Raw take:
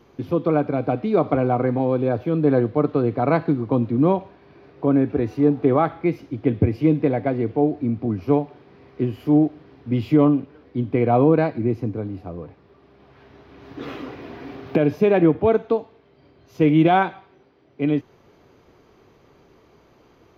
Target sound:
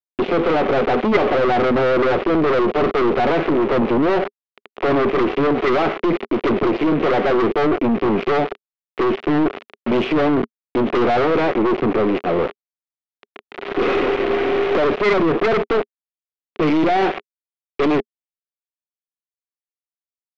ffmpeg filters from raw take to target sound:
ffmpeg -i in.wav -filter_complex "[0:a]adynamicequalizer=threshold=0.0112:dfrequency=1200:dqfactor=1.6:tfrequency=1200:tqfactor=1.6:attack=5:release=100:ratio=0.375:range=2.5:mode=cutabove:tftype=bell,aecho=1:1:5.5:0.47,acrossover=split=1400[link_01][link_02];[link_02]acompressor=mode=upward:threshold=-46dB:ratio=2.5[link_03];[link_01][link_03]amix=inputs=2:normalize=0,alimiter=limit=-13.5dB:level=0:latency=1:release=12,acontrast=79,aresample=16000,aeval=exprs='val(0)*gte(abs(val(0)),0.0316)':channel_layout=same,aresample=44100,asplit=2[link_04][link_05];[link_05]highpass=frequency=720:poles=1,volume=26dB,asoftclip=type=tanh:threshold=-7dB[link_06];[link_04][link_06]amix=inputs=2:normalize=0,lowpass=frequency=2300:poles=1,volume=-6dB,highpass=200,equalizer=frequency=230:width_type=q:width=4:gain=4,equalizer=frequency=410:width_type=q:width=4:gain=9,equalizer=frequency=910:width_type=q:width=4:gain=-6,equalizer=frequency=1600:width_type=q:width=4:gain=-5,lowpass=frequency=3100:width=0.5412,lowpass=frequency=3100:width=1.3066,aeval=exprs='1.06*(cos(1*acos(clip(val(0)/1.06,-1,1)))-cos(1*PI/2))+0.422*(cos(3*acos(clip(val(0)/1.06,-1,1)))-cos(3*PI/2))+0.422*(cos(5*acos(clip(val(0)/1.06,-1,1)))-cos(5*PI/2))+0.0668*(cos(8*acos(clip(val(0)/1.06,-1,1)))-cos(8*PI/2))':channel_layout=same,volume=-6dB" out.wav

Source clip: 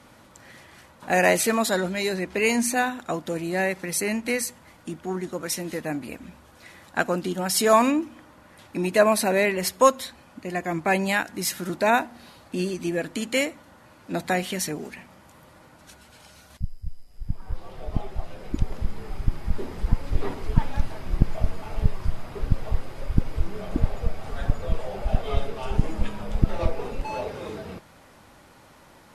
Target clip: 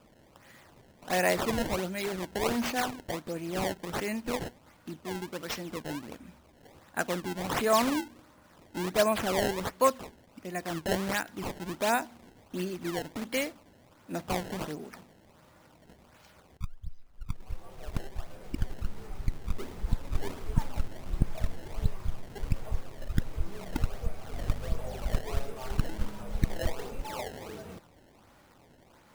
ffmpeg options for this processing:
ffmpeg -i in.wav -filter_complex "[0:a]asettb=1/sr,asplit=3[link_01][link_02][link_03];[link_01]atrim=end=24.324[link_04];[link_02]atrim=start=24.32:end=25.21,asetpts=PTS-STARTPTS,afade=type=in:duration=0.004:curve=qsin,afade=type=out:start_time=0.886:duration=0.004:curve=qsin,aeval=exprs='val(0)+0.0224*(sin(2*PI*50*n/s)+sin(2*PI*2*50*n/s)/2+sin(2*PI*3*50*n/s)/3+sin(2*PI*4*50*n/s)/4+sin(2*PI*5*50*n/s)/5)':channel_layout=same[link_05];[link_03]atrim=start=25.206[link_06];[link_04][link_05]acrossfade=duration=0.004:curve1=hsin:curve2=qsin[link_07];[link_07][link_06]acrossfade=duration=0.004:curve1=qsin:curve2=hsin,acrusher=samples=21:mix=1:aa=0.000001:lfo=1:lforange=33.6:lforate=1.4,volume=-7dB" out.wav

